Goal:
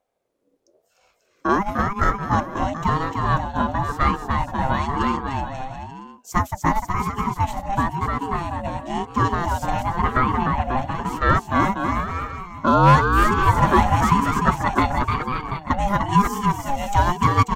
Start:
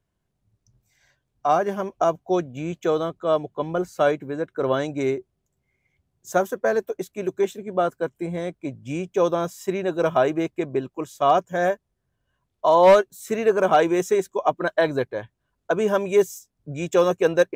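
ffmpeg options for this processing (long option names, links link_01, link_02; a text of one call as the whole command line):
ffmpeg -i in.wav -filter_complex "[0:a]aecho=1:1:300|540|732|885.6|1008:0.631|0.398|0.251|0.158|0.1,asettb=1/sr,asplit=3[link_01][link_02][link_03];[link_01]atrim=end=9.834[link_04];[link_02]atrim=start=9.83:end=10.77,asetpts=PTS-STARTPTS,afade=type=in:duration=0.004:curve=qsin,afade=type=out:start_time=0.936:duration=0.004:curve=qsin,acrossover=split=3000[link_05][link_06];[link_06]acompressor=threshold=-53dB:ratio=4:attack=1:release=60[link_07];[link_05][link_07]amix=inputs=2:normalize=0[link_08];[link_03]atrim=start=10.766[link_09];[link_04][link_08]acrossfade=duration=0.004:curve1=hsin:curve2=qsin[link_10];[link_10][link_09]acrossfade=duration=0.004:curve1=qsin:curve2=hsin,aeval=exprs='val(0)*sin(2*PI*510*n/s+510*0.25/0.98*sin(2*PI*0.98*n/s))':channel_layout=same,volume=3dB" out.wav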